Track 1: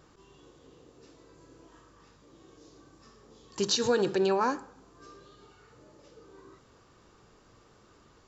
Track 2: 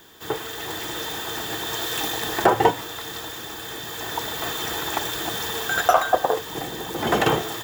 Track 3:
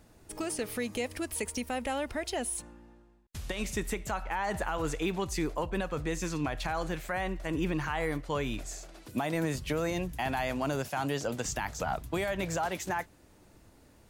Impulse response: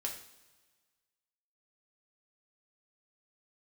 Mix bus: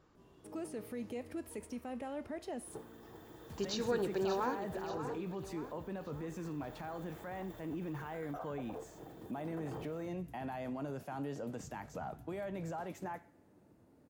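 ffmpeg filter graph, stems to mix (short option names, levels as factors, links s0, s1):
-filter_complex "[0:a]volume=0.398,asplit=2[s0][s1];[s1]volume=0.316[s2];[1:a]adelay=2450,volume=0.141[s3];[2:a]highpass=140,adelay=150,volume=0.794,asplit=2[s4][s5];[s5]volume=0.1[s6];[s3][s4]amix=inputs=2:normalize=0,equalizer=f=3400:w=0.31:g=-14.5,alimiter=level_in=3.55:limit=0.0631:level=0:latency=1:release=15,volume=0.282,volume=1[s7];[3:a]atrim=start_sample=2205[s8];[s6][s8]afir=irnorm=-1:irlink=0[s9];[s2]aecho=0:1:585|1170|1755|2340|2925|3510|4095:1|0.47|0.221|0.104|0.0488|0.0229|0.0108[s10];[s0][s7][s9][s10]amix=inputs=4:normalize=0,highshelf=f=4100:g=-10"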